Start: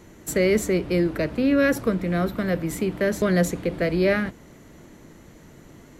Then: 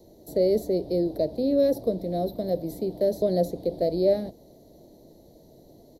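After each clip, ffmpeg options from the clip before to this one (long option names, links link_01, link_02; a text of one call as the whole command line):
ffmpeg -i in.wav -filter_complex "[0:a]firequalizer=gain_entry='entry(180,0);entry(350,5);entry(650,11);entry(1300,-25);entry(1900,-17);entry(2700,-18);entry(4000,8);entry(7400,-7);entry(12000,8)':delay=0.05:min_phase=1,acrossover=split=390|550|2900[link_01][link_02][link_03][link_04];[link_04]alimiter=level_in=4.5dB:limit=-24dB:level=0:latency=1:release=170,volume=-4.5dB[link_05];[link_01][link_02][link_03][link_05]amix=inputs=4:normalize=0,volume=-8dB" out.wav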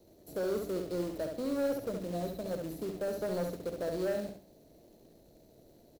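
ffmpeg -i in.wav -filter_complex "[0:a]acrusher=bits=3:mode=log:mix=0:aa=0.000001,asoftclip=type=tanh:threshold=-20dB,asplit=2[link_01][link_02];[link_02]aecho=0:1:68|136|204|272:0.531|0.154|0.0446|0.0129[link_03];[link_01][link_03]amix=inputs=2:normalize=0,volume=-8.5dB" out.wav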